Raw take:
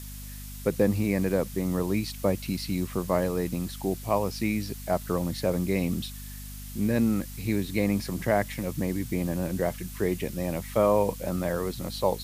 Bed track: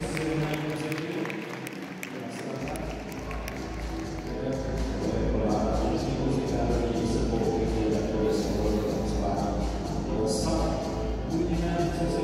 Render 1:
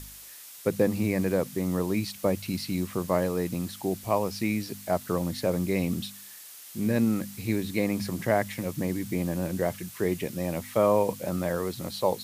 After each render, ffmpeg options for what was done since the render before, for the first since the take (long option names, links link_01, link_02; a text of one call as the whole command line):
ffmpeg -i in.wav -af "bandreject=frequency=50:width_type=h:width=4,bandreject=frequency=100:width_type=h:width=4,bandreject=frequency=150:width_type=h:width=4,bandreject=frequency=200:width_type=h:width=4,bandreject=frequency=250:width_type=h:width=4" out.wav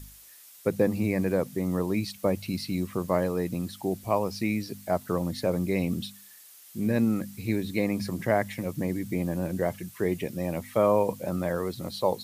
ffmpeg -i in.wav -af "afftdn=noise_reduction=7:noise_floor=-46" out.wav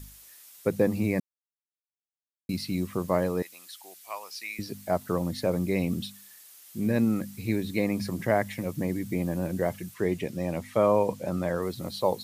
ffmpeg -i in.wav -filter_complex "[0:a]asettb=1/sr,asplit=3[link_01][link_02][link_03];[link_01]atrim=end=3.424[link_04];[link_02]atrim=start=3.42:end=4.59,asetpts=PTS-STARTPTS,afade=type=in:duration=0.004:curve=qsin,afade=type=out:start_time=1.166:duration=0.004:curve=qsin,highpass=1500[link_05];[link_03]atrim=start=4.586[link_06];[link_04][link_05]acrossfade=duration=0.004:curve1=hsin:curve2=qsin[link_07];[link_07][link_06]acrossfade=duration=0.004:curve1=qsin:curve2=hsin,asettb=1/sr,asplit=3[link_08][link_09][link_10];[link_08]atrim=end=9.944[link_11];[link_09]atrim=start=9.94:end=11.62,asetpts=PTS-STARTPTS,afade=type=in:duration=0.004:curve=qsin,afade=type=out:start_time=1.676:duration=0.004:curve=qsin,acrossover=split=9100[link_12][link_13];[link_13]acompressor=threshold=-57dB:ratio=4:attack=1:release=60[link_14];[link_12][link_14]amix=inputs=2:normalize=0[link_15];[link_10]atrim=start=11.616[link_16];[link_11][link_15]acrossfade=duration=0.004:curve1=hsin:curve2=qsin[link_17];[link_17][link_16]acrossfade=duration=0.004:curve1=qsin:curve2=hsin,asplit=3[link_18][link_19][link_20];[link_18]atrim=end=1.2,asetpts=PTS-STARTPTS,afade=type=out:start_time=1.196:duration=0.004:curve=hsin[link_21];[link_19]atrim=start=1.2:end=2.49,asetpts=PTS-STARTPTS,volume=0[link_22];[link_20]atrim=start=2.49,asetpts=PTS-STARTPTS,afade=type=in:duration=0.004:curve=hsin[link_23];[link_21][link_22][link_23]concat=n=3:v=0:a=1" out.wav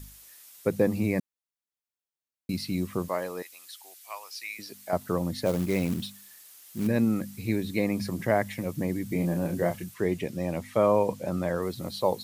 ffmpeg -i in.wav -filter_complex "[0:a]asettb=1/sr,asplit=3[link_01][link_02][link_03];[link_01]atrim=end=3.084[link_04];[link_02]atrim=start=3.08:end=4.93,asetpts=PTS-STARTPTS,afade=type=in:duration=0.004:curve=qsin,afade=type=out:start_time=1.846:duration=0.004:curve=qsin,highpass=frequency=820:poles=1[link_05];[link_03]atrim=start=4.926[link_06];[link_04][link_05]acrossfade=duration=0.004:curve1=hsin:curve2=qsin[link_07];[link_07][link_06]acrossfade=duration=0.004:curve1=qsin:curve2=hsin,asplit=3[link_08][link_09][link_10];[link_08]afade=type=out:start_time=5.45:duration=0.02[link_11];[link_09]acrusher=bits=4:mode=log:mix=0:aa=0.000001,afade=type=in:start_time=5.45:duration=0.02,afade=type=out:start_time=6.86:duration=0.02[link_12];[link_10]afade=type=in:start_time=6.86:duration=0.02[link_13];[link_11][link_12][link_13]amix=inputs=3:normalize=0,asettb=1/sr,asplit=3[link_14][link_15][link_16];[link_14]atrim=end=9.084[link_17];[link_15]atrim=start=9.08:end=9.84,asetpts=PTS-STARTPTS,afade=type=in:duration=0.004:curve=qsin,afade=type=out:start_time=0.756:duration=0.004:curve=qsin,asplit=2[link_18][link_19];[link_19]adelay=29,volume=-5.5dB[link_20];[link_18][link_20]amix=inputs=2:normalize=0,atrim=end_sample=33516[link_21];[link_16]atrim=start=9.836[link_22];[link_17][link_21]acrossfade=duration=0.004:curve1=hsin:curve2=qsin[link_23];[link_23][link_22]acrossfade=duration=0.004:curve1=qsin:curve2=hsin" out.wav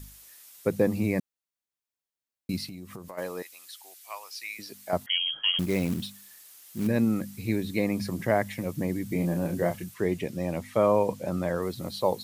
ffmpeg -i in.wav -filter_complex "[0:a]asplit=3[link_01][link_02][link_03];[link_01]afade=type=out:start_time=2.66:duration=0.02[link_04];[link_02]acompressor=threshold=-37dB:ratio=12:attack=3.2:release=140:knee=1:detection=peak,afade=type=in:start_time=2.66:duration=0.02,afade=type=out:start_time=3.17:duration=0.02[link_05];[link_03]afade=type=in:start_time=3.17:duration=0.02[link_06];[link_04][link_05][link_06]amix=inputs=3:normalize=0,asettb=1/sr,asplit=3[link_07][link_08][link_09];[link_07]atrim=end=5.064[link_10];[link_08]atrim=start=5.06:end=5.59,asetpts=PTS-STARTPTS,afade=type=in:duration=0.004:curve=qsin,afade=type=out:start_time=0.526:duration=0.004:curve=qsin,lowpass=frequency=2900:width_type=q:width=0.5098,lowpass=frequency=2900:width_type=q:width=0.6013,lowpass=frequency=2900:width_type=q:width=0.9,lowpass=frequency=2900:width_type=q:width=2.563,afreqshift=-3400[link_11];[link_09]atrim=start=5.586[link_12];[link_10][link_11]acrossfade=duration=0.004:curve1=hsin:curve2=qsin[link_13];[link_13][link_12]acrossfade=duration=0.004:curve1=qsin:curve2=hsin" out.wav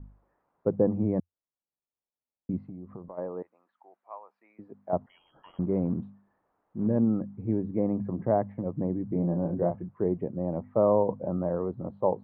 ffmpeg -i in.wav -af "lowpass=frequency=1000:width=0.5412,lowpass=frequency=1000:width=1.3066,equalizer=frequency=87:width=6.9:gain=-3.5" out.wav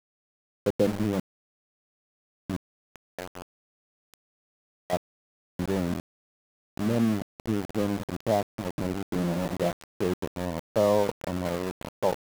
ffmpeg -i in.wav -af "aeval=exprs='val(0)*gte(abs(val(0)),0.0355)':channel_layout=same" out.wav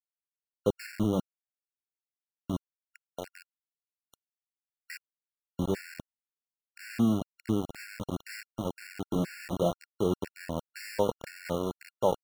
ffmpeg -i in.wav -af "afftfilt=real='re*gt(sin(2*PI*2*pts/sr)*(1-2*mod(floor(b*sr/1024/1400),2)),0)':imag='im*gt(sin(2*PI*2*pts/sr)*(1-2*mod(floor(b*sr/1024/1400),2)),0)':win_size=1024:overlap=0.75" out.wav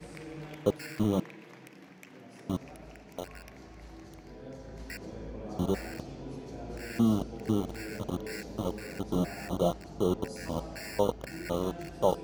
ffmpeg -i in.wav -i bed.wav -filter_complex "[1:a]volume=-15dB[link_01];[0:a][link_01]amix=inputs=2:normalize=0" out.wav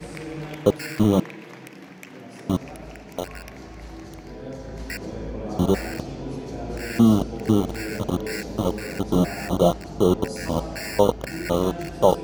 ffmpeg -i in.wav -af "volume=9.5dB,alimiter=limit=-3dB:level=0:latency=1" out.wav